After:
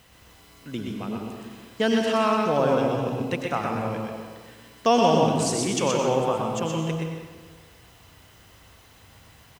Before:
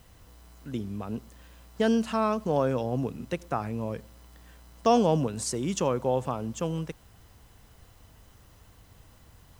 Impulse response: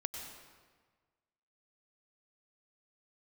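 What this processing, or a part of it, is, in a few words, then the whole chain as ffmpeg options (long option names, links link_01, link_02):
PA in a hall: -filter_complex "[0:a]highpass=frequency=130:poles=1,equalizer=frequency=2600:width_type=o:width=1.7:gain=6,aecho=1:1:124:0.631[link_01];[1:a]atrim=start_sample=2205[link_02];[link_01][link_02]afir=irnorm=-1:irlink=0,volume=3dB"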